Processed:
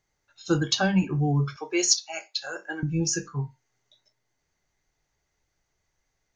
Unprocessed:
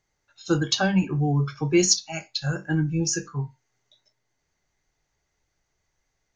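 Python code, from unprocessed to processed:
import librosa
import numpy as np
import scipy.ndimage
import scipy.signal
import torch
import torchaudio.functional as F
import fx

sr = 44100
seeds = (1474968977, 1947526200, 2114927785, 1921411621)

y = fx.highpass(x, sr, hz=400.0, slope=24, at=(1.56, 2.83))
y = F.gain(torch.from_numpy(y), -1.0).numpy()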